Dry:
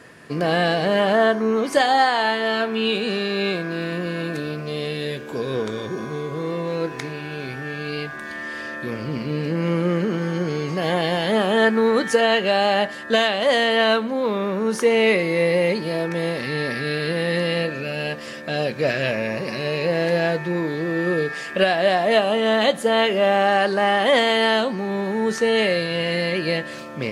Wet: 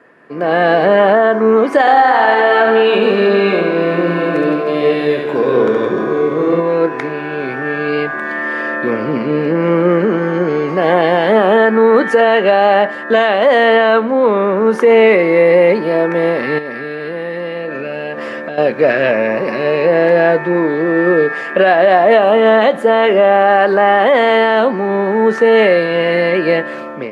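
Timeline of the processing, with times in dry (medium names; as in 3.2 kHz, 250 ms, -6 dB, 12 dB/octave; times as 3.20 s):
1.80–6.60 s: reverse bouncing-ball echo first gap 70 ms, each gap 1.4×, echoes 5
16.58–18.58 s: compression 10:1, threshold -30 dBFS
whole clip: three-band isolator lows -17 dB, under 220 Hz, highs -20 dB, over 2.2 kHz; peak limiter -13.5 dBFS; level rider gain up to 14.5 dB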